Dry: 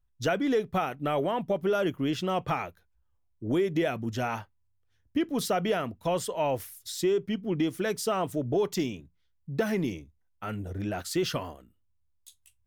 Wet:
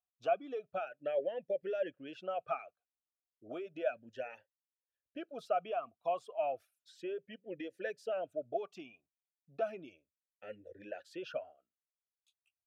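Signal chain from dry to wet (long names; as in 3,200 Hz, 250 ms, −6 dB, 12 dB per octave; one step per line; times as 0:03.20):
reverb reduction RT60 1.3 s
formant filter swept between two vowels a-e 0.33 Hz
level +1 dB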